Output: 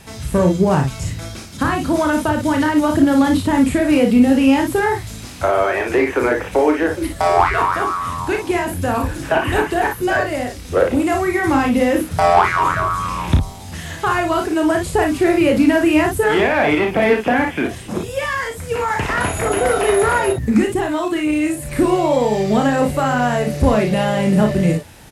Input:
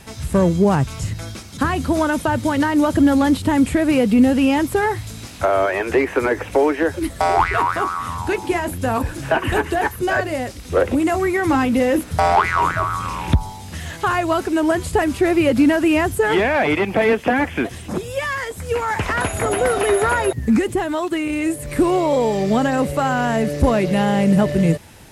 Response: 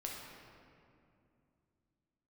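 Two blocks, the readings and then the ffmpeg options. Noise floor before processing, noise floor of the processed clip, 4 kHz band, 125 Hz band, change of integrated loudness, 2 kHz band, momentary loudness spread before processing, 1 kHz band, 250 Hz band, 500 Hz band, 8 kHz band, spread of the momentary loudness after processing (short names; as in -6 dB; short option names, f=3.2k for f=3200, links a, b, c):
-35 dBFS, -33 dBFS, +2.0 dB, +1.0 dB, +1.5 dB, +1.5 dB, 8 LU, +2.0 dB, +1.5 dB, +1.5 dB, +2.0 dB, 8 LU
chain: -af "aecho=1:1:33|56:0.531|0.473"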